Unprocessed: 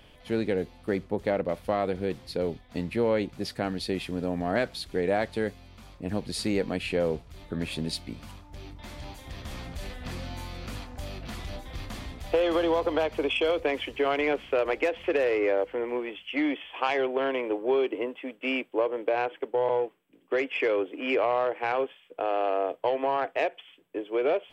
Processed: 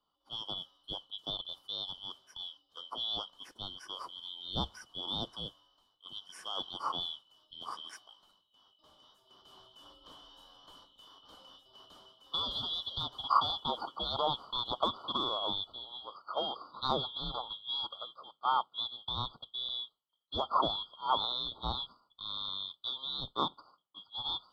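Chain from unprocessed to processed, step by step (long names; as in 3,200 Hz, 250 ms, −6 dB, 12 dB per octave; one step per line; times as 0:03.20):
band-splitting scrambler in four parts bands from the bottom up 2413
high shelf with overshoot 1,500 Hz −6.5 dB, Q 3
multiband upward and downward expander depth 70%
level −5 dB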